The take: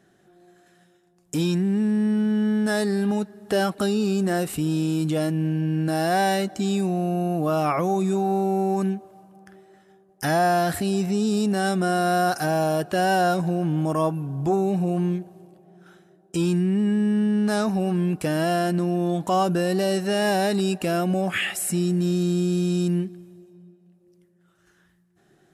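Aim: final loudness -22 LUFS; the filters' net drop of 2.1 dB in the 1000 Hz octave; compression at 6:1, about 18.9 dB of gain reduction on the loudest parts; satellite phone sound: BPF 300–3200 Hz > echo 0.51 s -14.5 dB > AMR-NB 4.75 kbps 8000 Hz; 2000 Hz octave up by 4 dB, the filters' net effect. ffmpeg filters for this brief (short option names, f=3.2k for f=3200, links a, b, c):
-af "equalizer=f=1k:t=o:g=-5,equalizer=f=2k:t=o:g=8,acompressor=threshold=-38dB:ratio=6,highpass=300,lowpass=3.2k,aecho=1:1:510:0.188,volume=21.5dB" -ar 8000 -c:a libopencore_amrnb -b:a 4750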